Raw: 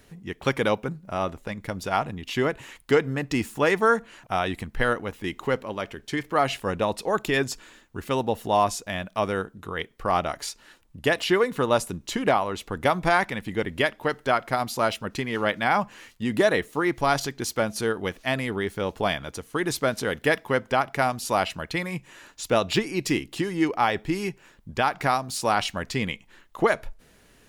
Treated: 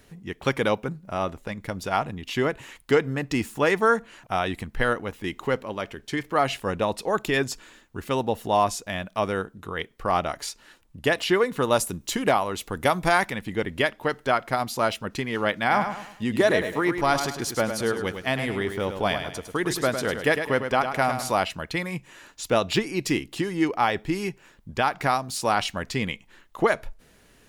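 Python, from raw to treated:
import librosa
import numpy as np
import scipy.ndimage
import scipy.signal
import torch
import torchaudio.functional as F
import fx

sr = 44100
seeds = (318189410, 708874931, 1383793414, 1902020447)

y = fx.high_shelf(x, sr, hz=7000.0, db=10.0, at=(11.62, 13.32))
y = fx.echo_feedback(y, sr, ms=104, feedback_pct=38, wet_db=-8, at=(15.68, 21.3), fade=0.02)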